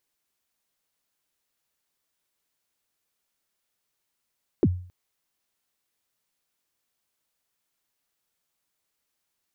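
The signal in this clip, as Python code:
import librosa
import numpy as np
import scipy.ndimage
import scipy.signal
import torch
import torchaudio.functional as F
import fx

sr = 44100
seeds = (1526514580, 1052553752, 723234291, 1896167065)

y = fx.drum_kick(sr, seeds[0], length_s=0.27, level_db=-13.0, start_hz=440.0, end_hz=90.0, sweep_ms=46.0, decay_s=0.46, click=False)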